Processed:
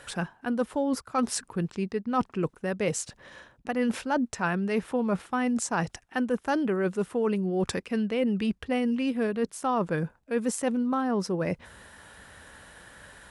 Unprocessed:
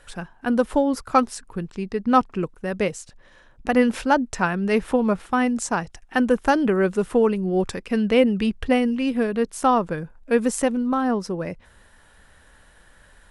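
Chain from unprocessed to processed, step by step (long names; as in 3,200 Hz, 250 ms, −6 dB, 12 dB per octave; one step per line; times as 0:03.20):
reversed playback
downward compressor 5 to 1, threshold −31 dBFS, peak gain reduction 17.5 dB
reversed playback
high-pass filter 79 Hz 12 dB per octave
level +5.5 dB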